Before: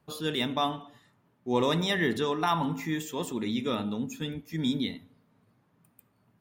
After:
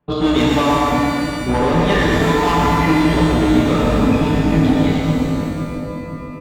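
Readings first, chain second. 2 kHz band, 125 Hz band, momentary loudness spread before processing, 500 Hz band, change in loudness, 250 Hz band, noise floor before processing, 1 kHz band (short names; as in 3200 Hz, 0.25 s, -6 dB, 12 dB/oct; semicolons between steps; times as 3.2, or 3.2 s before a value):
+13.5 dB, +18.0 dB, 9 LU, +14.0 dB, +14.0 dB, +16.5 dB, -70 dBFS, +14.5 dB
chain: octaver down 2 oct, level -6 dB; treble ducked by the level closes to 2800 Hz, closed at -22.5 dBFS; gate -57 dBFS, range -18 dB; LPF 3800 Hz 24 dB/oct; high shelf 2800 Hz -9.5 dB; comb 6.8 ms, depth 44%; compressor 3:1, threshold -32 dBFS, peak gain reduction 8.5 dB; chorus 0.32 Hz, delay 16 ms, depth 3.6 ms; hard clip -36 dBFS, distortion -10 dB; split-band echo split 310 Hz, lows 0.516 s, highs 0.123 s, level -4 dB; maximiser +31.5 dB; shimmer reverb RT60 1.9 s, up +12 st, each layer -8 dB, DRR -0.5 dB; gain -10.5 dB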